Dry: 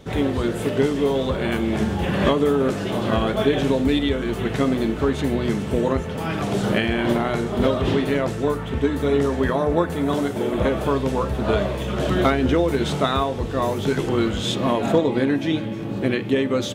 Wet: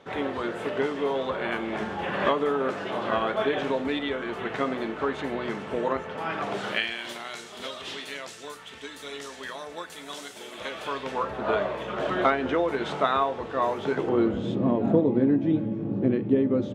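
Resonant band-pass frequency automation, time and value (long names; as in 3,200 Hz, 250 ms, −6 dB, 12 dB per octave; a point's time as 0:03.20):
resonant band-pass, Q 0.75
0:06.51 1,200 Hz
0:07.00 5,700 Hz
0:10.54 5,700 Hz
0:11.35 1,100 Hz
0:13.78 1,100 Hz
0:14.59 230 Hz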